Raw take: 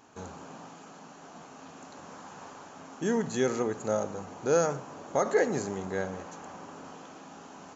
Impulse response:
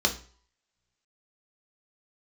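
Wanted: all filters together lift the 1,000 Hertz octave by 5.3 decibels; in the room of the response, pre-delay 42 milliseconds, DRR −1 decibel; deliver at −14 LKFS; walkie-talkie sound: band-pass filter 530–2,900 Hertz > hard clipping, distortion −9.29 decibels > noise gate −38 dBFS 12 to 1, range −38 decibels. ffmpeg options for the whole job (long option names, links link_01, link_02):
-filter_complex "[0:a]equalizer=frequency=1000:width_type=o:gain=8,asplit=2[link_01][link_02];[1:a]atrim=start_sample=2205,adelay=42[link_03];[link_02][link_03]afir=irnorm=-1:irlink=0,volume=-10.5dB[link_04];[link_01][link_04]amix=inputs=2:normalize=0,highpass=530,lowpass=2900,asoftclip=type=hard:threshold=-22.5dB,agate=range=-38dB:threshold=-38dB:ratio=12,volume=17dB"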